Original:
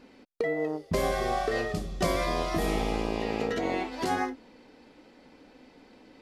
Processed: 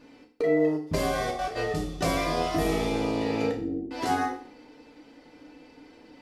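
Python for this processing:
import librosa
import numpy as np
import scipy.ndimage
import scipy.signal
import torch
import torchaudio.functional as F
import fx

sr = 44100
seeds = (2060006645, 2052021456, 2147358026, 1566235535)

y = fx.step_gate(x, sr, bpm=173, pattern='xxxxx.x...', floor_db=-12.0, edge_ms=4.5, at=(0.76, 1.55), fade=0.02)
y = fx.cheby2_lowpass(y, sr, hz=1500.0, order=4, stop_db=70, at=(3.51, 3.91))
y = fx.rev_fdn(y, sr, rt60_s=0.49, lf_ratio=1.0, hf_ratio=1.0, size_ms=20.0, drr_db=-0.5)
y = F.gain(torch.from_numpy(y), -1.5).numpy()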